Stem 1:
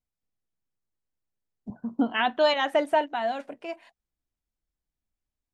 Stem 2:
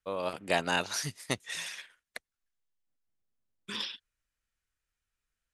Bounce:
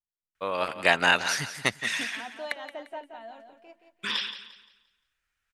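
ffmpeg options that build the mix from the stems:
ffmpeg -i stem1.wav -i stem2.wav -filter_complex "[0:a]volume=-16.5dB,asplit=2[link_01][link_02];[link_02]volume=-8.5dB[link_03];[1:a]equalizer=frequency=1800:width_type=o:width=2.2:gain=10.5,adelay=350,volume=0.5dB,asplit=2[link_04][link_05];[link_05]volume=-12.5dB[link_06];[link_03][link_06]amix=inputs=2:normalize=0,aecho=0:1:174|348|522|696|870:1|0.33|0.109|0.0359|0.0119[link_07];[link_01][link_04][link_07]amix=inputs=3:normalize=0" out.wav

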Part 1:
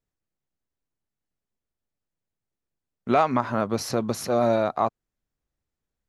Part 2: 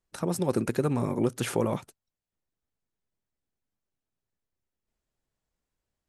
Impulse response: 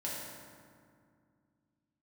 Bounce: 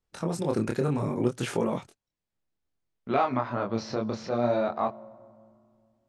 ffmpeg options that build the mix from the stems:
-filter_complex "[0:a]lowpass=frequency=5300:width=0.5412,lowpass=frequency=5300:width=1.3066,volume=-2dB,asplit=2[link_01][link_02];[link_02]volume=-21dB[link_03];[1:a]volume=2.5dB[link_04];[2:a]atrim=start_sample=2205[link_05];[link_03][link_05]afir=irnorm=-1:irlink=0[link_06];[link_01][link_04][link_06]amix=inputs=3:normalize=0,lowpass=7700,flanger=delay=22.5:depth=5.6:speed=0.62"

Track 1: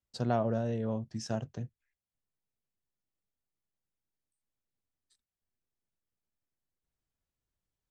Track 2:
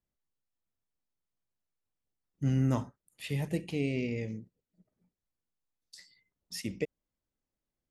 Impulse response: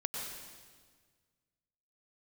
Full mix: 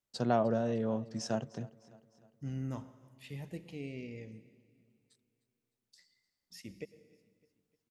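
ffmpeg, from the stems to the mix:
-filter_complex "[0:a]highpass=150,volume=1.5dB,asplit=2[link_01][link_02];[link_02]volume=-21dB[link_03];[1:a]equalizer=frequency=9600:width=3.2:gain=-5.5,volume=-12.5dB,asplit=3[link_04][link_05][link_06];[link_05]volume=-13dB[link_07];[link_06]volume=-22.5dB[link_08];[2:a]atrim=start_sample=2205[link_09];[link_07][link_09]afir=irnorm=-1:irlink=0[link_10];[link_03][link_08]amix=inputs=2:normalize=0,aecho=0:1:304|608|912|1216|1520|1824|2128:1|0.51|0.26|0.133|0.0677|0.0345|0.0176[link_11];[link_01][link_04][link_10][link_11]amix=inputs=4:normalize=0"

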